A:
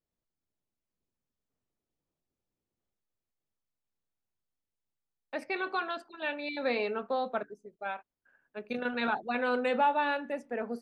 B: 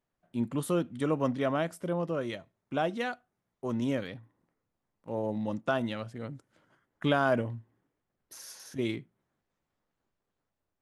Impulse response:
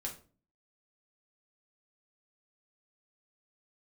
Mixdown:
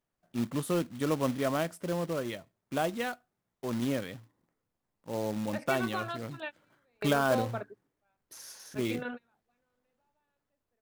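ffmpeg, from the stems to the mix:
-filter_complex "[0:a]alimiter=limit=-23dB:level=0:latency=1:release=32,acontrast=84,adelay=200,volume=-9.5dB,afade=type=out:start_time=9.38:duration=0.27:silence=0.421697[link_01];[1:a]acrusher=bits=3:mode=log:mix=0:aa=0.000001,volume=-1dB,asplit=2[link_02][link_03];[link_03]apad=whole_len=485834[link_04];[link_01][link_04]sidechaingate=range=-39dB:threshold=-57dB:ratio=16:detection=peak[link_05];[link_05][link_02]amix=inputs=2:normalize=0"

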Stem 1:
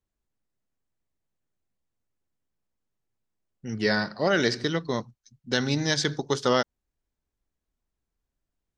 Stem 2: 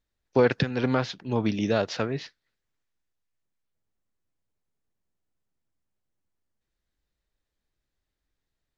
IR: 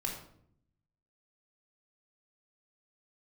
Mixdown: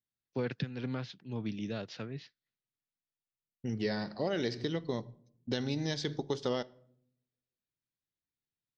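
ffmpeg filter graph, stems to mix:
-filter_complex "[0:a]agate=range=-33dB:threshold=-42dB:ratio=3:detection=peak,equalizer=frequency=1400:width_type=o:width=1:gain=-10,acompressor=threshold=-38dB:ratio=2.5,volume=2.5dB,asplit=2[link_01][link_02];[link_02]volume=-18.5dB[link_03];[1:a]highpass=frequency=110:width=0.5412,highpass=frequency=110:width=1.3066,equalizer=frequency=830:width=0.35:gain=-13,volume=-5dB[link_04];[2:a]atrim=start_sample=2205[link_05];[link_03][link_05]afir=irnorm=-1:irlink=0[link_06];[link_01][link_04][link_06]amix=inputs=3:normalize=0,lowpass=4200"

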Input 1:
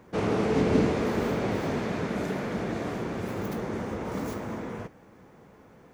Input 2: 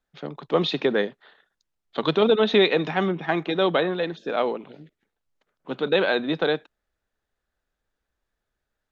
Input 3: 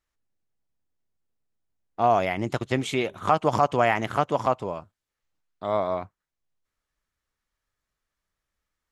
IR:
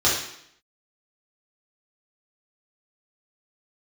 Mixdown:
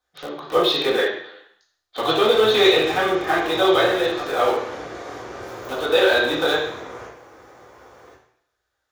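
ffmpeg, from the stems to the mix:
-filter_complex "[0:a]lowshelf=frequency=190:gain=-11.5,acompressor=threshold=-42dB:ratio=4,adelay=2200,volume=2.5dB,asplit=2[link_01][link_02];[link_02]volume=-9dB[link_03];[1:a]highpass=frequency=190:poles=1,acontrast=80,volume=-8dB,asplit=3[link_04][link_05][link_06];[link_05]volume=-9dB[link_07];[2:a]volume=-13.5dB,asplit=2[link_08][link_09];[link_09]volume=-12dB[link_10];[link_06]apad=whole_len=393115[link_11];[link_08][link_11]sidechaincompress=threshold=-26dB:ratio=8:attack=16:release=174[link_12];[link_04][link_12]amix=inputs=2:normalize=0,aeval=exprs='(mod(26.6*val(0)+1,2)-1)/26.6':channel_layout=same,acompressor=threshold=-47dB:ratio=2,volume=0dB[link_13];[3:a]atrim=start_sample=2205[link_14];[link_03][link_07][link_10]amix=inputs=3:normalize=0[link_15];[link_15][link_14]afir=irnorm=-1:irlink=0[link_16];[link_01][link_13][link_16]amix=inputs=3:normalize=0,equalizer=frequency=210:width=1.2:gain=-12.5"

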